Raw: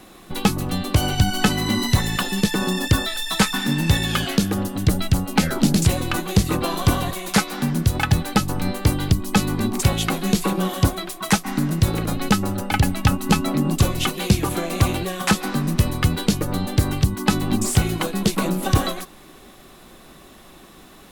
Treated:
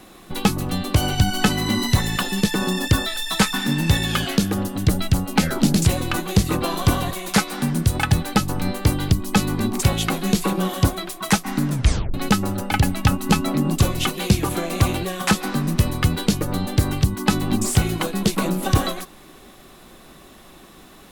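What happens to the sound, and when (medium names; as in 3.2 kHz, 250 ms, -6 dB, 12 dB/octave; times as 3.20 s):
7.46–8.14 s: peaking EQ 8.9 kHz +6 dB 0.26 oct
11.69 s: tape stop 0.45 s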